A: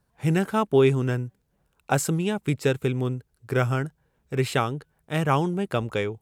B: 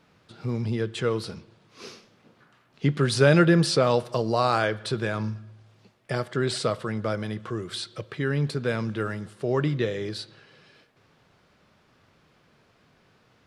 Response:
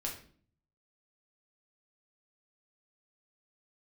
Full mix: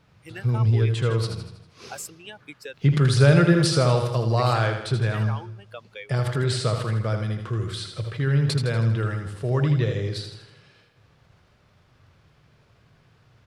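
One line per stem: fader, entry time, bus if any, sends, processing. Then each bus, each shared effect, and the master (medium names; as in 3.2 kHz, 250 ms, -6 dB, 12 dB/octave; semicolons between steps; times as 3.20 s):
-0.5 dB, 0.00 s, no send, no echo send, expander on every frequency bin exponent 2; high-pass 680 Hz 12 dB/octave; peak limiter -25 dBFS, peak gain reduction 11.5 dB
-1.5 dB, 0.00 s, no send, echo send -7 dB, resonant low shelf 160 Hz +8.5 dB, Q 1.5; decay stretcher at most 110 dB/s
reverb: none
echo: feedback delay 80 ms, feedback 50%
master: none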